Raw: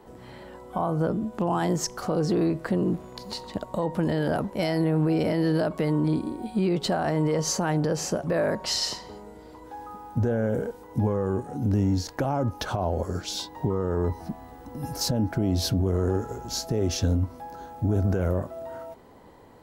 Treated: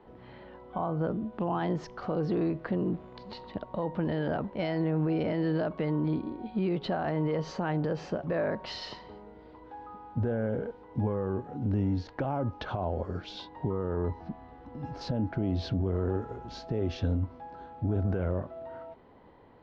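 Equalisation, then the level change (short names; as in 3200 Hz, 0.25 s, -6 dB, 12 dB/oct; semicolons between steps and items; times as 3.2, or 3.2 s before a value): LPF 3600 Hz 24 dB/oct; -5.0 dB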